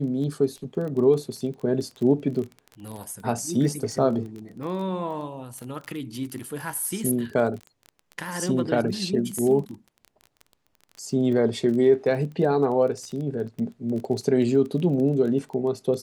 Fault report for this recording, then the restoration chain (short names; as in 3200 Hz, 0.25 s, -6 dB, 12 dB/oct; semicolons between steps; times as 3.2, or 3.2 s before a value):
crackle 20/s -32 dBFS
9.38 gap 5 ms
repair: de-click; interpolate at 9.38, 5 ms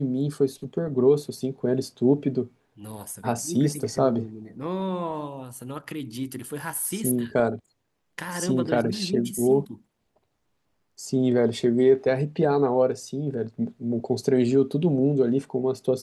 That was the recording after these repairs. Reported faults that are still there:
none